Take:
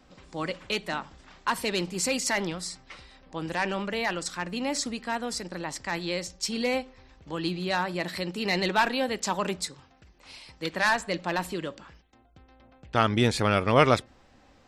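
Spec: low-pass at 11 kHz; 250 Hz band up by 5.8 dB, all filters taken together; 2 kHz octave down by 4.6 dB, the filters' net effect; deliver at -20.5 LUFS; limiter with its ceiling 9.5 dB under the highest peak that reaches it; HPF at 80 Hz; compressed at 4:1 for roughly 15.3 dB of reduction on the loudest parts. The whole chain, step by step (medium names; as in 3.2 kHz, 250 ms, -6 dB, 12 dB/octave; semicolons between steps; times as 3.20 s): high-pass 80 Hz; low-pass 11 kHz; peaking EQ 250 Hz +7.5 dB; peaking EQ 2 kHz -6 dB; compression 4:1, threshold -32 dBFS; trim +17.5 dB; peak limiter -10 dBFS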